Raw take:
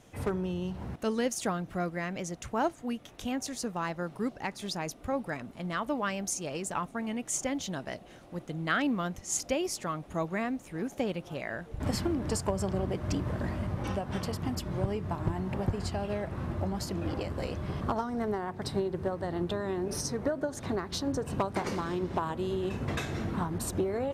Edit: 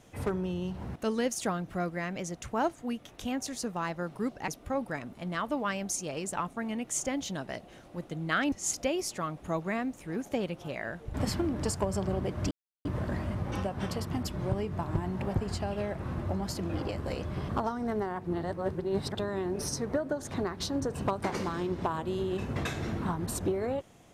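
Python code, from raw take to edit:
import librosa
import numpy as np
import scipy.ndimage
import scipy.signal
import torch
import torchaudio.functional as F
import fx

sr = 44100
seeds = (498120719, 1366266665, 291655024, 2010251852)

y = fx.edit(x, sr, fx.cut(start_s=4.48, length_s=0.38),
    fx.cut(start_s=8.9, length_s=0.28),
    fx.insert_silence(at_s=13.17, length_s=0.34),
    fx.reverse_span(start_s=18.57, length_s=0.92), tone=tone)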